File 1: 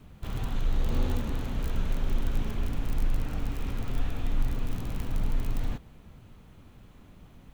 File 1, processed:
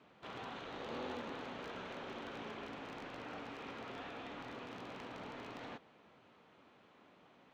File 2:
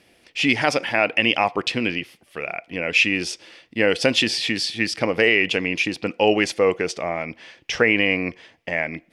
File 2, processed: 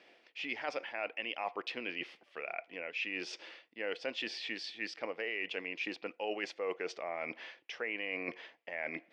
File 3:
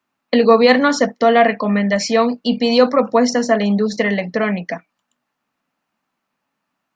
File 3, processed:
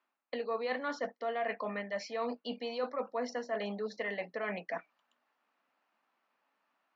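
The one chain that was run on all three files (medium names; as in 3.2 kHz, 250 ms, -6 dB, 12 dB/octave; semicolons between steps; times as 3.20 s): high-pass 430 Hz 12 dB/octave; reverse; compression 4:1, threshold -35 dBFS; reverse; distance through air 170 m; trim -1 dB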